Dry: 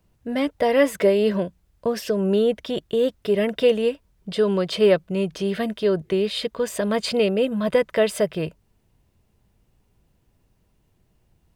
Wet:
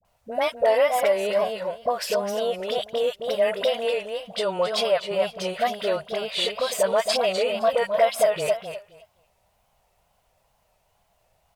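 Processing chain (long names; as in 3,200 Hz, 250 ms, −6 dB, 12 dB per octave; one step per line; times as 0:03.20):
on a send: repeating echo 259 ms, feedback 16%, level −7.5 dB
on the sum: downward compressor, threshold −19 dBFS, peak gain reduction 7.5 dB
low shelf with overshoot 460 Hz −12.5 dB, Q 3
all-pass dispersion highs, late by 51 ms, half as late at 810 Hz
in parallel at −2 dB: brickwall limiter −17.5 dBFS, peak gain reduction 9 dB
on the sum: notch filter 1,700 Hz, Q 13
tape wow and flutter 110 cents
level −1.5 dB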